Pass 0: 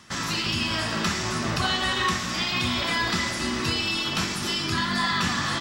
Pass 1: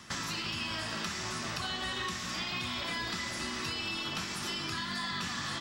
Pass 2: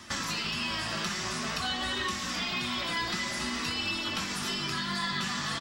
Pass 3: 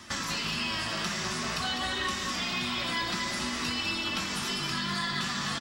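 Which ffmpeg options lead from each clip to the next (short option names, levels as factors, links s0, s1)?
-filter_complex "[0:a]acrossover=split=620|2200[s0][s1][s2];[s0]acompressor=threshold=0.00708:ratio=4[s3];[s1]acompressor=threshold=0.00794:ratio=4[s4];[s2]acompressor=threshold=0.0112:ratio=4[s5];[s3][s4][s5]amix=inputs=3:normalize=0"
-filter_complex "[0:a]flanger=delay=3.1:depth=2.9:regen=-35:speed=0.5:shape=triangular,asplit=2[s0][s1];[s1]adelay=20,volume=0.299[s2];[s0][s2]amix=inputs=2:normalize=0,volume=2.24"
-af "aecho=1:1:203:0.447"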